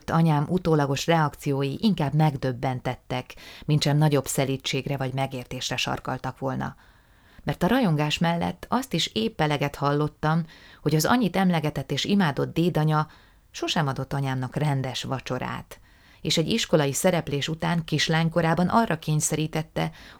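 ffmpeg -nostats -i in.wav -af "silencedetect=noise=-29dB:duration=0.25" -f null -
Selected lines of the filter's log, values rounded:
silence_start: 3.31
silence_end: 3.69 | silence_duration: 0.38
silence_start: 6.69
silence_end: 7.47 | silence_duration: 0.78
silence_start: 10.42
silence_end: 10.86 | silence_duration: 0.43
silence_start: 13.04
silence_end: 13.56 | silence_duration: 0.53
silence_start: 15.72
silence_end: 16.25 | silence_duration: 0.53
silence_start: 19.88
silence_end: 20.20 | silence_duration: 0.32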